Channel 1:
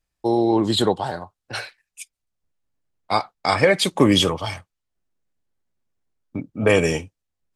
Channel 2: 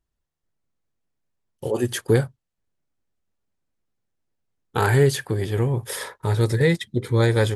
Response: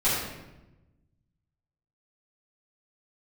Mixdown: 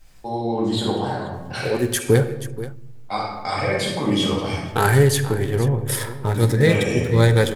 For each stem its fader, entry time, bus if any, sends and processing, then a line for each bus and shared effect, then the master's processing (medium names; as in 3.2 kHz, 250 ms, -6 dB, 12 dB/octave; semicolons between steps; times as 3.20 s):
-16.5 dB, 0.00 s, send -5.5 dB, echo send -17.5 dB, level flattener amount 50%
+1.5 dB, 0.00 s, send -22 dB, echo send -14 dB, local Wiener filter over 9 samples; treble shelf 6.5 kHz +9 dB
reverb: on, RT60 1.0 s, pre-delay 4 ms
echo: delay 481 ms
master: none